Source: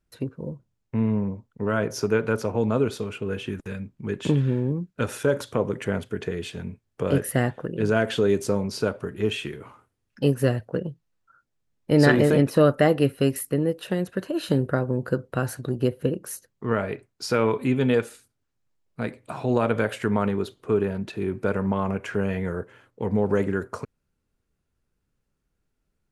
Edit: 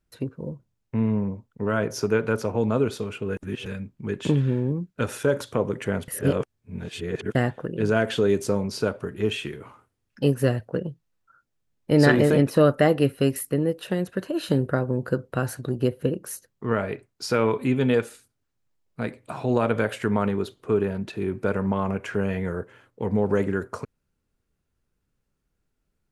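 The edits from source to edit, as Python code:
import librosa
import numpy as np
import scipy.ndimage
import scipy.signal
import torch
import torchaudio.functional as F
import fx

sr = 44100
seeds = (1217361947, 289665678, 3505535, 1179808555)

y = fx.edit(x, sr, fx.reverse_span(start_s=3.37, length_s=0.29),
    fx.reverse_span(start_s=6.08, length_s=1.27), tone=tone)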